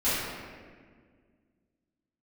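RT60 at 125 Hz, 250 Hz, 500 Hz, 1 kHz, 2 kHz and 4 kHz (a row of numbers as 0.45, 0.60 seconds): 2.4, 2.6, 2.0, 1.5, 1.6, 1.1 seconds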